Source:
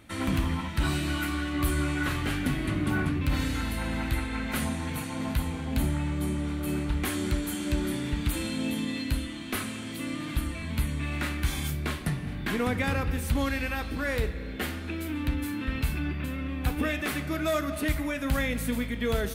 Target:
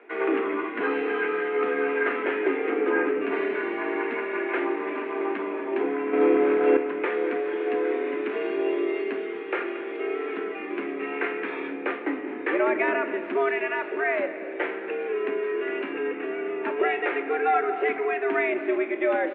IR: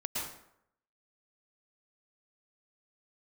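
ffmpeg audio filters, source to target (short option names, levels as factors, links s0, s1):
-filter_complex "[0:a]highpass=f=170:t=q:w=0.5412,highpass=f=170:t=q:w=1.307,lowpass=f=2300:t=q:w=0.5176,lowpass=f=2300:t=q:w=0.7071,lowpass=f=2300:t=q:w=1.932,afreqshift=130,asplit=4[s0][s1][s2][s3];[s1]adelay=227,afreqshift=-44,volume=0.126[s4];[s2]adelay=454,afreqshift=-88,volume=0.0479[s5];[s3]adelay=681,afreqshift=-132,volume=0.0182[s6];[s0][s4][s5][s6]amix=inputs=4:normalize=0,asettb=1/sr,asplit=3[s7][s8][s9];[s7]atrim=end=6.134[s10];[s8]atrim=start=6.13:end=6.77,asetpts=PTS-STARTPTS,afade=t=in:d=0.004:c=qsin,afade=t=out:st=0.636:d=0.004:c=qsin,acontrast=82[s11];[s9]atrim=start=6.766[s12];[s10][s11]acrossfade=d=0.004:c1=hsin:c2=qsin[s13];[s13][s12]acrossfade=d=0.004:c1=qsin:c2=hsin,volume=1.88"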